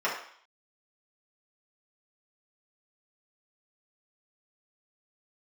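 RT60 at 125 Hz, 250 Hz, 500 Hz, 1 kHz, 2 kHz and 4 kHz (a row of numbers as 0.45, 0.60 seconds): 0.25, 0.50, 0.50, 0.60, 0.60, 0.65 seconds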